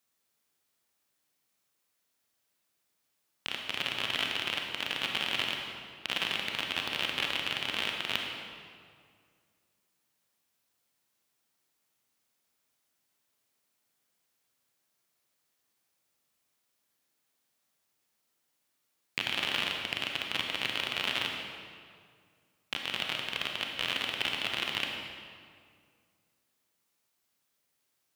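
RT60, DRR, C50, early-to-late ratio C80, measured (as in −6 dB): 2.0 s, 1.0 dB, 2.5 dB, 4.0 dB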